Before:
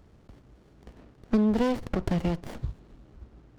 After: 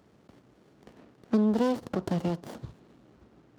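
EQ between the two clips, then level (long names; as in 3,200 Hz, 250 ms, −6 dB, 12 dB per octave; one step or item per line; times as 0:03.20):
high-pass filter 160 Hz 12 dB per octave
dynamic equaliser 2,200 Hz, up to −7 dB, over −56 dBFS, Q 1.7
0.0 dB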